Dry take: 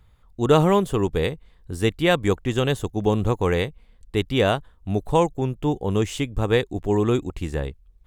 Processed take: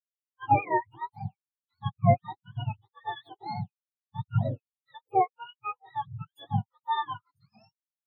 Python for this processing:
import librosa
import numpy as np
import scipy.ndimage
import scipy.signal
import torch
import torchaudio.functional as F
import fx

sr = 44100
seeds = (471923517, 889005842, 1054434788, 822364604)

y = fx.octave_mirror(x, sr, pivot_hz=610.0)
y = fx.spectral_expand(y, sr, expansion=2.5)
y = F.gain(torch.from_numpy(y), -2.0).numpy()